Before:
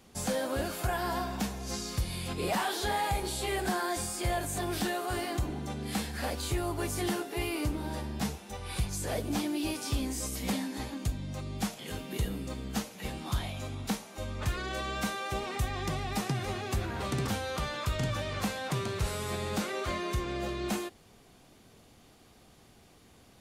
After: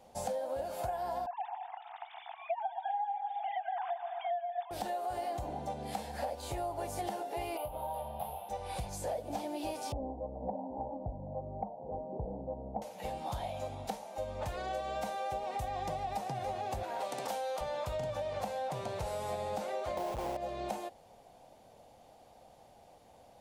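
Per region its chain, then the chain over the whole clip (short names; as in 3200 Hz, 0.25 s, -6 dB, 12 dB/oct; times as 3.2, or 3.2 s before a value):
1.26–4.71 sine-wave speech + brick-wall FIR high-pass 660 Hz + split-band echo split 960 Hz, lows 0.122 s, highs 0.196 s, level -8 dB
7.57–8.49 EQ curve 150 Hz 0 dB, 300 Hz -15 dB, 560 Hz +2 dB, 1100 Hz +3 dB, 1800 Hz -11 dB, 3100 Hz +4 dB, 7000 Hz -27 dB, 11000 Hz +13 dB + compressor, threshold -36 dBFS + doubler 23 ms -6 dB
9.92–12.82 steep low-pass 930 Hz 48 dB/oct + echo 0.774 s -23.5 dB
16.83–17.61 HPF 240 Hz + tilt +1.5 dB/oct
19.97–20.37 Chebyshev low-pass 1000 Hz, order 4 + companded quantiser 2-bit
whole clip: band shelf 680 Hz +15 dB 1.1 oct; compressor 10:1, threshold -26 dBFS; gain -7 dB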